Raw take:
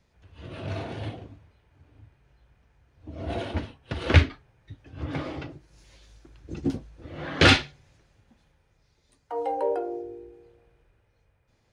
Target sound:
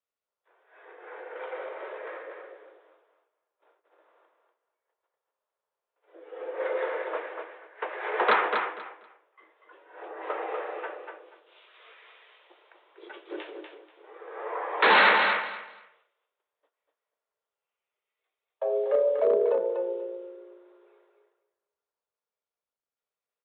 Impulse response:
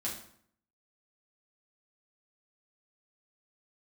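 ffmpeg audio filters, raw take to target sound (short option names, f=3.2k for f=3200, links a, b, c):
-filter_complex "[0:a]agate=range=-23dB:threshold=-55dB:ratio=16:detection=peak,highpass=f=530:w=0.5412,highpass=f=530:w=1.3066,dynaudnorm=f=230:g=13:m=7dB,aresample=16000,asoftclip=type=hard:threshold=-16dB,aresample=44100,afreqshift=360,asplit=2[a][b];[b]aecho=0:1:121|242|363:0.531|0.106|0.0212[c];[a][c]amix=inputs=2:normalize=0,asetrate=22050,aresample=44100" -ar 48000 -c:a libopus -b:a 256k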